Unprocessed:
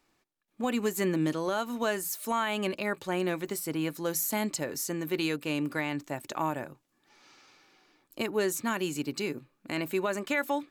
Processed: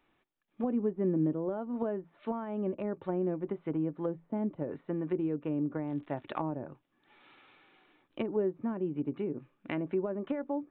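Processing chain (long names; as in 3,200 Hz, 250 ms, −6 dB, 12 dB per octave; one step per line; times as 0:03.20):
treble cut that deepens with the level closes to 510 Hz, closed at −28 dBFS
0:05.84–0:06.41: surface crackle 130 per second −43 dBFS
downsampling to 8,000 Hz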